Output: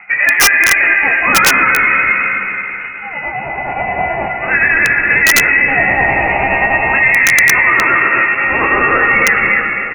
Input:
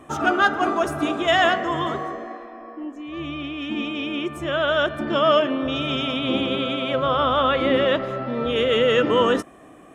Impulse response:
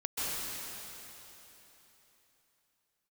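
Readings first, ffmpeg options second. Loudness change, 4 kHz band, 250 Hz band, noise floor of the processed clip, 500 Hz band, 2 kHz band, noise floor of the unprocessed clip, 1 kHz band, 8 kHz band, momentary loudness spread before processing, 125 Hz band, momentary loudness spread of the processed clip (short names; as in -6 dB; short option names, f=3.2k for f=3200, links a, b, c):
+11.5 dB, +3.5 dB, -1.0 dB, -24 dBFS, -1.0 dB, +18.5 dB, -46 dBFS, +7.5 dB, n/a, 14 LU, +5.0 dB, 12 LU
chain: -filter_complex "[0:a]highpass=f=880:w=0.5412,highpass=f=880:w=1.3066,acontrast=21,tremolo=f=9.5:d=0.65,flanger=delay=18.5:depth=7.8:speed=0.61,lowpass=f=2.7k:t=q:w=0.5098,lowpass=f=2.7k:t=q:w=0.6013,lowpass=f=2.7k:t=q:w=0.9,lowpass=f=2.7k:t=q:w=2.563,afreqshift=-3200,asplit=2[a][b];[b]adelay=15,volume=-7.5dB[c];[a][c]amix=inputs=2:normalize=0,aecho=1:1:265|530|795:0.501|0.0902|0.0162,asplit=2[d][e];[1:a]atrim=start_sample=2205[f];[e][f]afir=irnorm=-1:irlink=0,volume=-11.5dB[g];[d][g]amix=inputs=2:normalize=0,aeval=exprs='(mod(3.76*val(0)+1,2)-1)/3.76':c=same,alimiter=level_in=16.5dB:limit=-1dB:release=50:level=0:latency=1,volume=-1dB"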